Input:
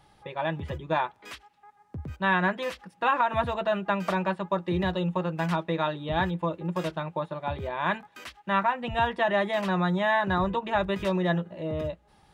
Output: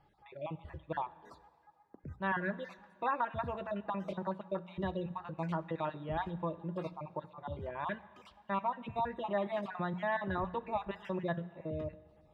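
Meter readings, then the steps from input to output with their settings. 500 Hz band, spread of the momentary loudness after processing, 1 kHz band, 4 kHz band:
-9.5 dB, 10 LU, -9.5 dB, -16.5 dB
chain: random spectral dropouts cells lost 35%; LPF 1500 Hz 6 dB/oct; notches 60/120/180 Hz; plate-style reverb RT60 1.9 s, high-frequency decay 0.95×, DRR 16.5 dB; gain -7 dB

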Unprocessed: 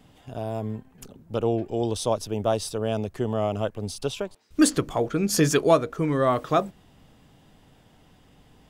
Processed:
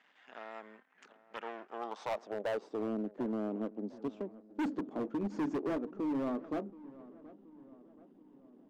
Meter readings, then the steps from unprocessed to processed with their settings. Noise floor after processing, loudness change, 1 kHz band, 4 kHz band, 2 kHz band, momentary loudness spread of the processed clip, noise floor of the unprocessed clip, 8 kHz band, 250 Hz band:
-66 dBFS, -13.0 dB, -14.0 dB, -21.5 dB, -12.5 dB, 19 LU, -57 dBFS, under -30 dB, -9.5 dB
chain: half-wave gain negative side -12 dB; in parallel at -2 dB: compressor, threshold -33 dBFS, peak gain reduction 17.5 dB; on the sum: band-pass sweep 1800 Hz -> 280 Hz, 1.52–2.94; elliptic band-pass 200–7100 Hz; hard clip -30.5 dBFS, distortion -5 dB; on a send: darkening echo 0.726 s, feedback 56%, low-pass 1500 Hz, level -18 dB

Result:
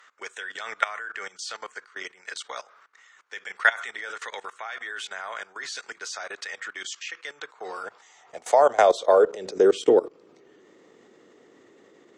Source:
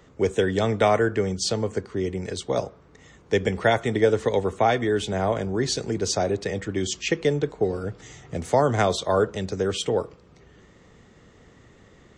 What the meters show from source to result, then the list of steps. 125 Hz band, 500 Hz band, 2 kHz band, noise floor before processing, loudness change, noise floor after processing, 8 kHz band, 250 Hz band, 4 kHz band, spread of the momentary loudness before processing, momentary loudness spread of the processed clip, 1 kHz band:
under -25 dB, -1.5 dB, +2.5 dB, -54 dBFS, -1.0 dB, -57 dBFS, -6.5 dB, -9.0 dB, -5.5 dB, 8 LU, 19 LU, -0.5 dB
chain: high-pass sweep 1400 Hz -> 340 Hz, 7.24–9.84; level quantiser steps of 20 dB; added harmonics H 5 -40 dB, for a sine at -8 dBFS; gain +4.5 dB

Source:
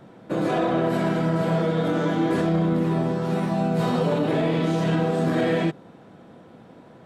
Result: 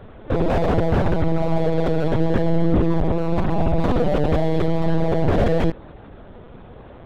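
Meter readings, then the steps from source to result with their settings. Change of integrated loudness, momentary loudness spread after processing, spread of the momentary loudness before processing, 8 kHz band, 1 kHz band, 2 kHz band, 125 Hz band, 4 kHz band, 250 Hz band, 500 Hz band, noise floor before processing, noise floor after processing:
+2.0 dB, 3 LU, 3 LU, n/a, +1.5 dB, -1.0 dB, +3.5 dB, -2.0 dB, +1.0 dB, +2.5 dB, -49 dBFS, -42 dBFS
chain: LPC vocoder at 8 kHz pitch kept; slew limiter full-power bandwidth 38 Hz; gain +6.5 dB

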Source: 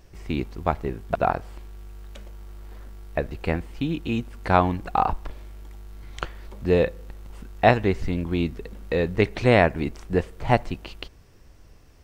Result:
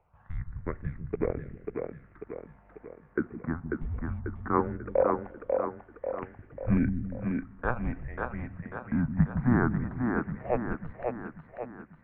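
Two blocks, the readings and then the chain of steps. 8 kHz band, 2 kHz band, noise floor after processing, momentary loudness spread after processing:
n/a, -9.0 dB, -58 dBFS, 16 LU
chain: phaser stages 6, 0.19 Hz, lowest notch 180–1300 Hz; split-band echo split 430 Hz, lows 0.16 s, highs 0.542 s, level -3.5 dB; mistuned SSB -250 Hz 210–2100 Hz; gain -2.5 dB

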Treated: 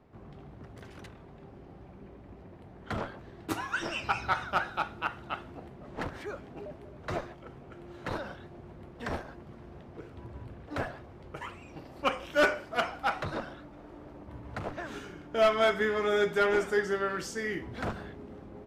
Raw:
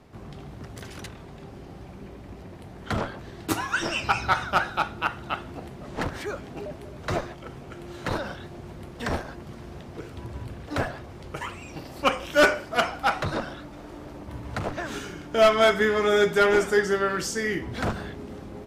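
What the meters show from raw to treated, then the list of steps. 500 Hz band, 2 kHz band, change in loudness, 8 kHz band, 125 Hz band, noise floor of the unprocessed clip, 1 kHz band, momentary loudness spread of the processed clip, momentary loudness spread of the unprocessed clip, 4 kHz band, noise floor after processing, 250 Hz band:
-6.0 dB, -6.0 dB, -6.5 dB, -11.0 dB, -8.0 dB, -43 dBFS, -6.0 dB, 23 LU, 22 LU, -8.0 dB, -51 dBFS, -7.0 dB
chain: tone controls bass -2 dB, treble -5 dB; mismatched tape noise reduction decoder only; gain -6 dB

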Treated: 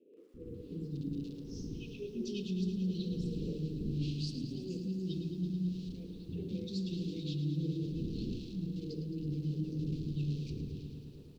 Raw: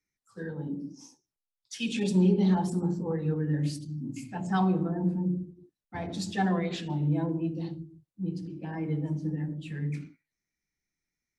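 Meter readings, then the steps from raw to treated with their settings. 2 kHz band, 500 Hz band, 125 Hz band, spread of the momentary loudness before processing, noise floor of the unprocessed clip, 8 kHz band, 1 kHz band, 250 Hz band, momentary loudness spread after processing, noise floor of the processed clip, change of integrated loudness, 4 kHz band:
under -15 dB, -9.0 dB, -5.5 dB, 14 LU, under -85 dBFS, under -10 dB, under -35 dB, -7.5 dB, 8 LU, -51 dBFS, -8.0 dB, -4.5 dB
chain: wind noise 430 Hz -38 dBFS; in parallel at -10.5 dB: sample gate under -29 dBFS; on the sum: Chebyshev band-stop 470–2600 Hz, order 4; air absorption 58 m; three bands offset in time mids, lows, highs 0.34/0.54 s, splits 410/1900 Hz; reverse; compressor 10:1, threshold -32 dBFS, peak gain reduction 15 dB; reverse; EQ curve 360 Hz 0 dB, 1700 Hz -12 dB, 4300 Hz +8 dB, 9400 Hz -10 dB; lo-fi delay 0.109 s, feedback 80%, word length 11-bit, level -10.5 dB; gain -1.5 dB

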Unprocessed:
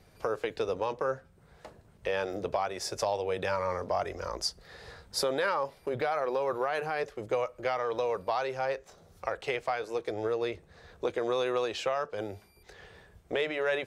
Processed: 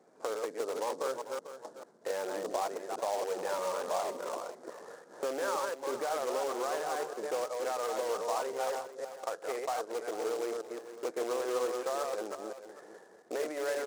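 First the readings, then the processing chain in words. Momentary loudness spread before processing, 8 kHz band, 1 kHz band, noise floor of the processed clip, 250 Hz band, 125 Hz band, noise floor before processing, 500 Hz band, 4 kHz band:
8 LU, +1.5 dB, -2.5 dB, -57 dBFS, -3.5 dB, under -15 dB, -60 dBFS, -2.5 dB, -6.5 dB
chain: reverse delay 0.174 s, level -4 dB; dynamic EQ 380 Hz, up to -5 dB, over -41 dBFS, Q 0.87; Gaussian blur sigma 5.8 samples; in parallel at -10 dB: wrapped overs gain 32 dB; on the sum: HPF 260 Hz 24 dB/oct; on a send: echo 0.445 s -12.5 dB; on the sum: noise-modulated delay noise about 5800 Hz, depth 0.033 ms

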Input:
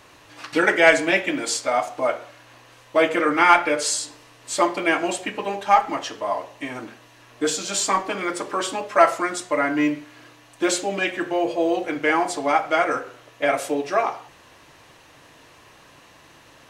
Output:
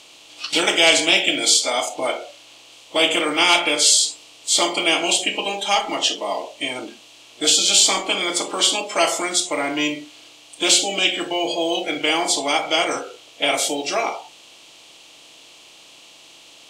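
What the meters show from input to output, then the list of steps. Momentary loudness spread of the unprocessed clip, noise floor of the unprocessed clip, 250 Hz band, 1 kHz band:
12 LU, -51 dBFS, -1.5 dB, -3.0 dB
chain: per-bin compression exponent 0.6; spectral noise reduction 15 dB; resonant high shelf 2300 Hz +10.5 dB, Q 3; gain -5 dB

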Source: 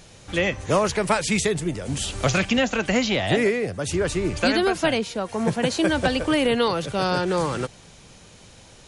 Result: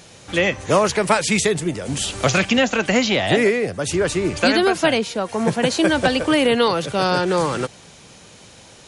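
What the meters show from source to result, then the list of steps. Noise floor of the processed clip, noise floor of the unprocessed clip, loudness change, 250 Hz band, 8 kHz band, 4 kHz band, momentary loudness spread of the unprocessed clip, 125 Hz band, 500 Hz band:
-45 dBFS, -49 dBFS, +4.0 dB, +3.5 dB, +4.5 dB, +4.5 dB, 6 LU, +1.5 dB, +4.0 dB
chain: HPF 140 Hz 6 dB/oct; gain +4.5 dB

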